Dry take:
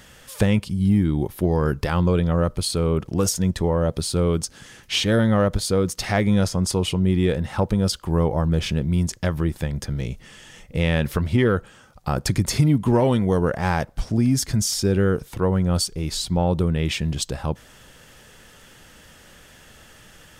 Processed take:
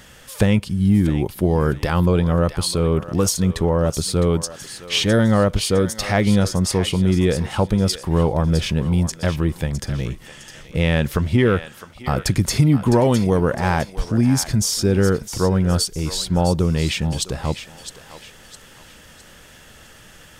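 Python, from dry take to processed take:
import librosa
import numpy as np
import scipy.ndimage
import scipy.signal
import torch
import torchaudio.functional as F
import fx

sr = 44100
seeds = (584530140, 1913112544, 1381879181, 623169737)

y = fx.echo_thinned(x, sr, ms=659, feedback_pct=40, hz=920.0, wet_db=-10)
y = y * librosa.db_to_amplitude(2.5)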